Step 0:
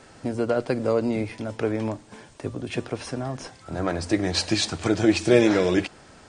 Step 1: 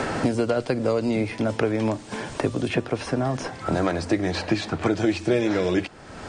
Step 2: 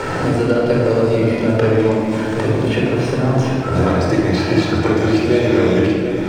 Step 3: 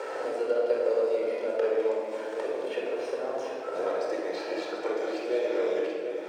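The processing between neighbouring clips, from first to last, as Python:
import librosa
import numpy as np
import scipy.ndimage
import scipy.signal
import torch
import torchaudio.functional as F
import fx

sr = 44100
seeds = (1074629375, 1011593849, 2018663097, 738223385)

y1 = fx.high_shelf(x, sr, hz=5400.0, db=-6.0)
y1 = fx.band_squash(y1, sr, depth_pct=100)
y2 = fx.backlash(y1, sr, play_db=-45.0)
y2 = y2 + 10.0 ** (-9.0 / 20.0) * np.pad(y2, (int(733 * sr / 1000.0), 0))[:len(y2)]
y2 = fx.room_shoebox(y2, sr, seeds[0], volume_m3=3000.0, walls='mixed', distance_m=4.5)
y3 = fx.ladder_highpass(y2, sr, hz=430.0, resonance_pct=55)
y3 = y3 * librosa.db_to_amplitude(-6.0)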